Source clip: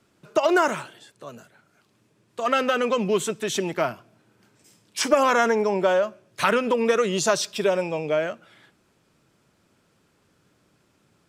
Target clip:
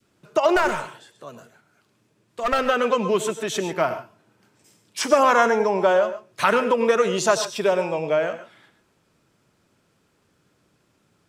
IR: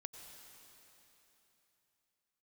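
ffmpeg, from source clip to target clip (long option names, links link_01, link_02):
-filter_complex "[0:a]adynamicequalizer=threshold=0.0251:dfrequency=930:dqfactor=0.73:tfrequency=930:tqfactor=0.73:attack=5:release=100:ratio=0.375:range=2.5:mode=boostabove:tftype=bell,asettb=1/sr,asplit=3[link_01][link_02][link_03];[link_01]atrim=end=0.564[link_04];[link_02]atrim=start=0.56:end=2.59,asetpts=PTS-STARTPTS,afade=type=in:duration=0.004:curve=qsin,afade=type=out:start_time=2.026:duration=0.004:curve=qsin,aeval=exprs='clip(val(0),-1,0.0944)':channel_layout=same[link_05];[link_03]atrim=start=2.586[link_06];[link_04][link_05]acrossfade=duration=0.004:curve1=hsin:curve2=qsin[link_07];[link_07][link_06]acrossfade=duration=0.004:curve1=qsin:curve2=hsin[link_08];[1:a]atrim=start_sample=2205,atrim=end_sample=6615[link_09];[link_08][link_09]afir=irnorm=-1:irlink=0,volume=4.5dB"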